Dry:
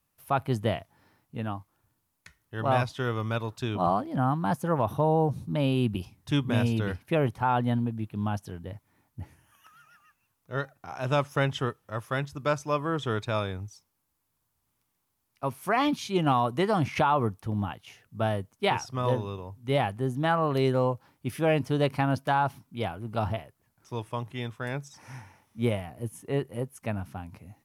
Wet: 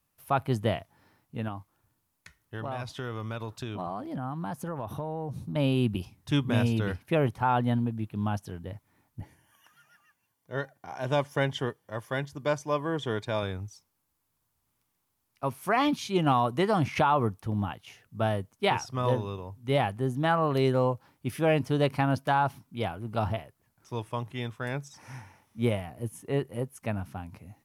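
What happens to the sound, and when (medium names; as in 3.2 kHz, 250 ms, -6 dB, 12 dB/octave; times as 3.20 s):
1.48–5.56 s: compression, threshold -31 dBFS
9.21–13.43 s: comb of notches 1.3 kHz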